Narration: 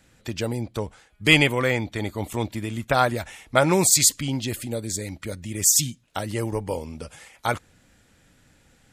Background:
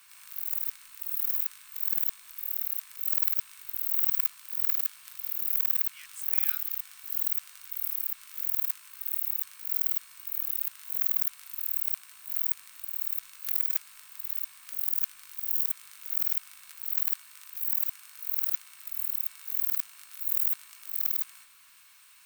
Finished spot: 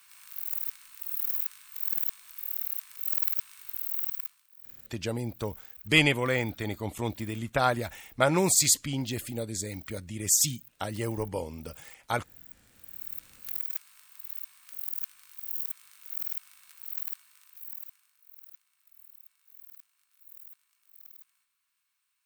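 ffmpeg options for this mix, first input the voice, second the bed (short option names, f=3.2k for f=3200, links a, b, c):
-filter_complex "[0:a]adelay=4650,volume=-5dB[a];[1:a]volume=14.5dB,afade=t=out:st=3.7:d=0.78:silence=0.0944061,afade=t=in:st=12.48:d=0.76:silence=0.158489,afade=t=out:st=16.83:d=1.38:silence=0.149624[b];[a][b]amix=inputs=2:normalize=0"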